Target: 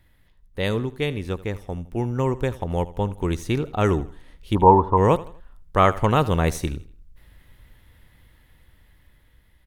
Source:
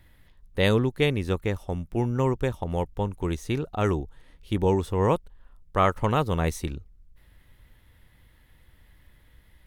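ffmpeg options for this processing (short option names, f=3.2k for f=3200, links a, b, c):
-filter_complex "[0:a]dynaudnorm=f=910:g=5:m=11.5dB,asplit=3[a][b][c];[a]afade=t=out:st=4.54:d=0.02[d];[b]lowpass=f=990:t=q:w=8.4,afade=t=in:st=4.54:d=0.02,afade=t=out:st=4.96:d=0.02[e];[c]afade=t=in:st=4.96:d=0.02[f];[d][e][f]amix=inputs=3:normalize=0,asplit=2[g][h];[h]aecho=0:1:81|162|243:0.126|0.0466|0.0172[i];[g][i]amix=inputs=2:normalize=0,volume=-3dB"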